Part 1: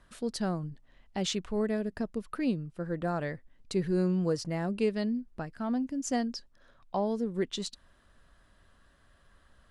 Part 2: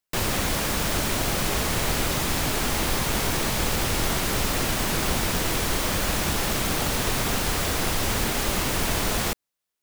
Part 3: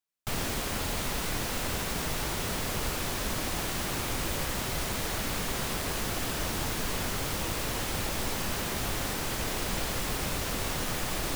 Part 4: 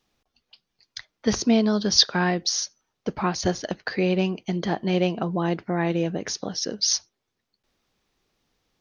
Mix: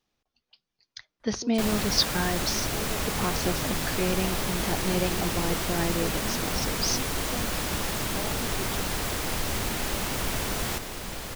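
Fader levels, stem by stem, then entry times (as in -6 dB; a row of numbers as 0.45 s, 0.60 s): -9.0 dB, -5.5 dB, -4.5 dB, -6.0 dB; 1.20 s, 1.45 s, 1.35 s, 0.00 s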